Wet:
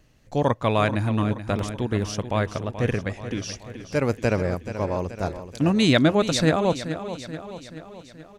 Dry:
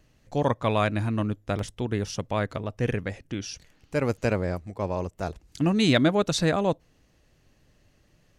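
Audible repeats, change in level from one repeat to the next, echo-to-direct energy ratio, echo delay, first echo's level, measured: 5, -5.0 dB, -10.0 dB, 0.43 s, -11.5 dB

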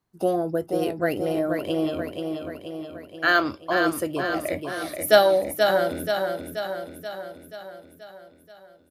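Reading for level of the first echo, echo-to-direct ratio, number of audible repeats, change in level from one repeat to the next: -5.5 dB, -3.5 dB, 7, -4.5 dB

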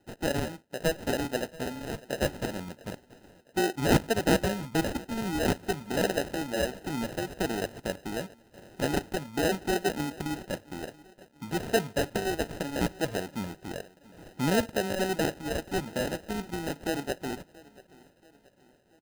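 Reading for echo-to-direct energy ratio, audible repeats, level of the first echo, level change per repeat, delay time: -21.0 dB, 3, -22.0 dB, -6.5 dB, 0.681 s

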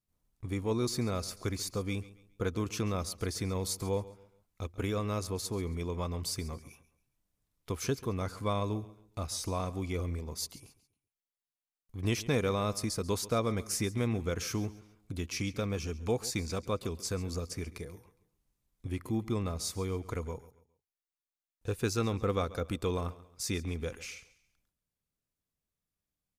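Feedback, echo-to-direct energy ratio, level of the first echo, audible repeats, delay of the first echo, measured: 33%, -17.5 dB, -18.0 dB, 2, 0.137 s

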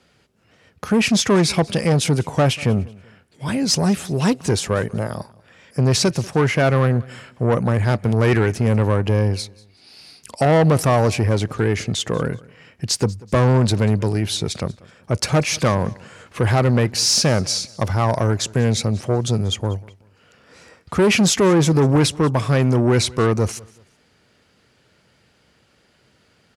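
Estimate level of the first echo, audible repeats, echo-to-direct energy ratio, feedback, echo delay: -23.0 dB, 2, -22.5 dB, 31%, 0.189 s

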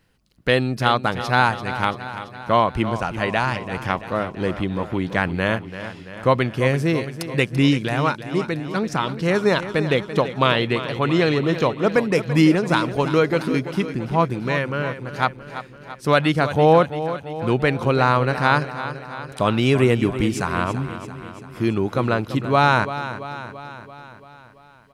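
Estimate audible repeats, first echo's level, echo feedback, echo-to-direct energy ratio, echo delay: 6, -12.0 dB, 60%, -10.0 dB, 0.337 s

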